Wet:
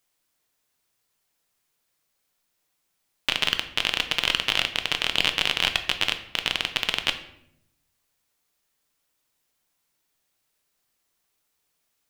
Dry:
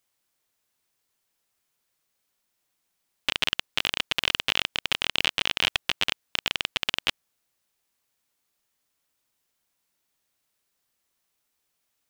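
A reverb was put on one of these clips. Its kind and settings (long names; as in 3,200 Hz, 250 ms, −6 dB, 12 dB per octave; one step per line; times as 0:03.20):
rectangular room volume 180 cubic metres, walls mixed, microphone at 0.43 metres
level +1.5 dB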